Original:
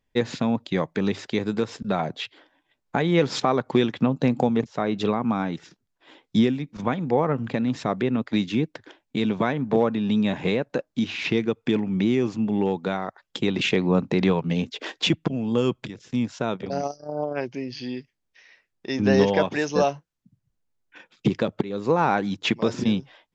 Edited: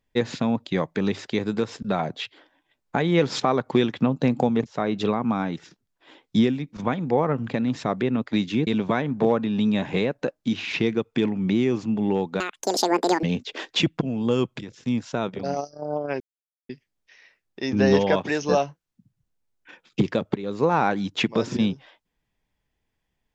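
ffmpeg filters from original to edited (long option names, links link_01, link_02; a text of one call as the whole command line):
ffmpeg -i in.wav -filter_complex "[0:a]asplit=6[link_01][link_02][link_03][link_04][link_05][link_06];[link_01]atrim=end=8.672[link_07];[link_02]atrim=start=9.178:end=12.914[link_08];[link_03]atrim=start=12.91:end=14.5,asetpts=PTS-STARTPTS,asetrate=84231,aresample=44100[link_09];[link_04]atrim=start=14.496:end=17.47,asetpts=PTS-STARTPTS,afade=type=out:start_time=2.97:duration=0.004:curve=hsin[link_10];[link_05]atrim=start=17.47:end=17.96,asetpts=PTS-STARTPTS,volume=0[link_11];[link_06]atrim=start=17.96,asetpts=PTS-STARTPTS,afade=type=in:duration=0.004:curve=hsin[link_12];[link_07][link_08]acrossfade=duration=0.004:curve1=hsin:curve2=hsin[link_13];[link_13][link_09]acrossfade=duration=0.004:curve1=hsin:curve2=hsin[link_14];[link_10][link_11][link_12]concat=n=3:v=0:a=1[link_15];[link_14][link_15]acrossfade=duration=0.004:curve1=hsin:curve2=hsin" out.wav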